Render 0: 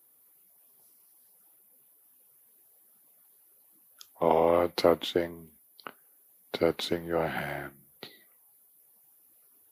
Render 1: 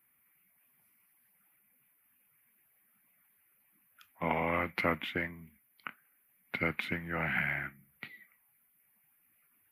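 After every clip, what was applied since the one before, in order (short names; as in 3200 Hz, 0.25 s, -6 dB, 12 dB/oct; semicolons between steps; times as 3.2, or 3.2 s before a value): EQ curve 210 Hz 0 dB, 420 Hz -15 dB, 880 Hz -7 dB, 2300 Hz +10 dB, 3800 Hz -14 dB, 6700 Hz -19 dB, 12000 Hz -9 dB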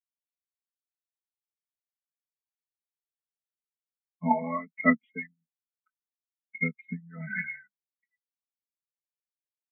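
comb 4.6 ms, depth 80%; spectral expander 4:1; gain +7 dB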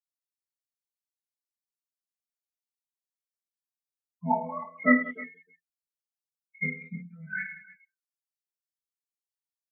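per-bin expansion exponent 2; chorus voices 4, 0.55 Hz, delay 23 ms, depth 1.8 ms; reverse bouncing-ball echo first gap 20 ms, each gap 1.6×, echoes 5; gain +4 dB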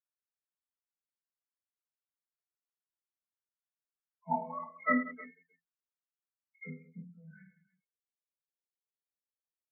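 dispersion lows, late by 54 ms, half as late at 370 Hz; low-pass sweep 1500 Hz -> 490 Hz, 6.45–7.21; gain -9 dB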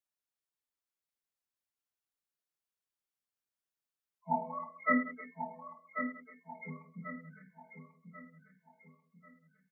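feedback echo 1.09 s, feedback 39%, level -8 dB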